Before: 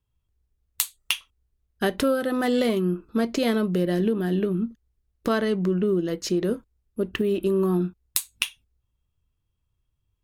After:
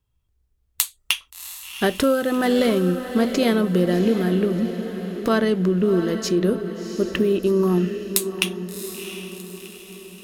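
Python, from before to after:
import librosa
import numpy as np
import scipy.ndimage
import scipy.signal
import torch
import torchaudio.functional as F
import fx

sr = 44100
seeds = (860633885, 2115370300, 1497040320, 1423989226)

y = fx.echo_diffused(x, sr, ms=712, feedback_pct=50, wet_db=-9.5)
y = y * 10.0 ** (3.5 / 20.0)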